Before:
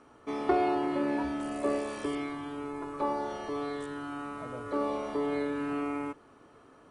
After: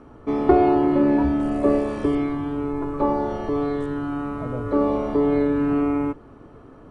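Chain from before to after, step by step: tilt EQ -3.5 dB/octave; trim +6.5 dB

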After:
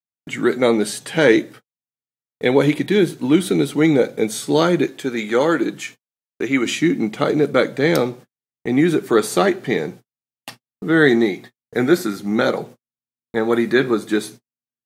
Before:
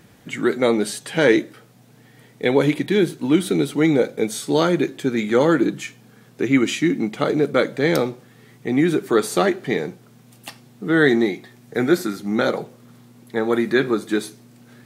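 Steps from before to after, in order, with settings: 4.87–6.66 s: bass shelf 230 Hz -11 dB; gate -38 dBFS, range -60 dB; trim +2 dB

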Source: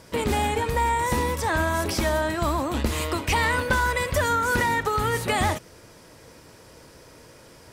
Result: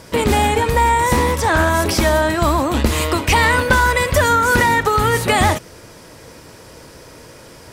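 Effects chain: 1.14–1.70 s: loudspeaker Doppler distortion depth 0.17 ms; trim +8.5 dB

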